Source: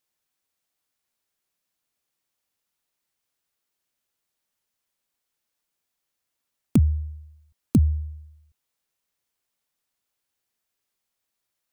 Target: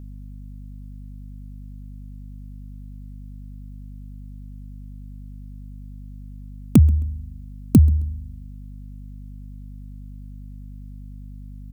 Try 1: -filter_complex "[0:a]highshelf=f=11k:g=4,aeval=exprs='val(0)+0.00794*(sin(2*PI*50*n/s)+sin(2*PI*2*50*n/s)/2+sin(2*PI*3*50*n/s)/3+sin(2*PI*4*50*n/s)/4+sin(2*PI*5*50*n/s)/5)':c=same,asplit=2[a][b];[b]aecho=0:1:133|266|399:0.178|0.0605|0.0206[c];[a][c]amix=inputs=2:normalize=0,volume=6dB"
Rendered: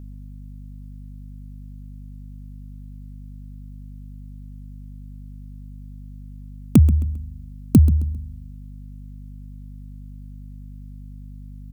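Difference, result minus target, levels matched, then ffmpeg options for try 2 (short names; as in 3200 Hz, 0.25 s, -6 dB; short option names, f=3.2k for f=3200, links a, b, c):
echo-to-direct +9 dB
-filter_complex "[0:a]highshelf=f=11k:g=4,aeval=exprs='val(0)+0.00794*(sin(2*PI*50*n/s)+sin(2*PI*2*50*n/s)/2+sin(2*PI*3*50*n/s)/3+sin(2*PI*4*50*n/s)/4+sin(2*PI*5*50*n/s)/5)':c=same,asplit=2[a][b];[b]aecho=0:1:133|266:0.0631|0.0215[c];[a][c]amix=inputs=2:normalize=0,volume=6dB"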